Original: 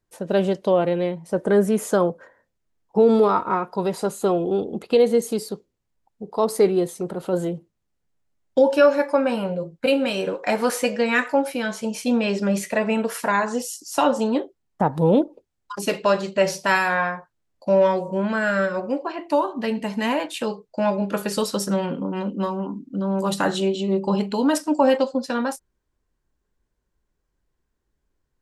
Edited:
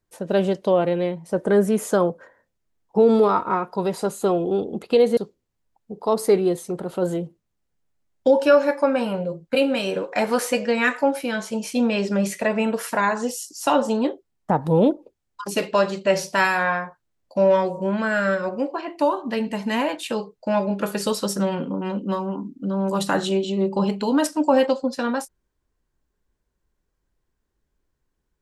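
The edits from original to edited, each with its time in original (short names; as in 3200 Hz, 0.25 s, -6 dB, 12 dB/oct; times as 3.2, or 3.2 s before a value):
5.17–5.48 cut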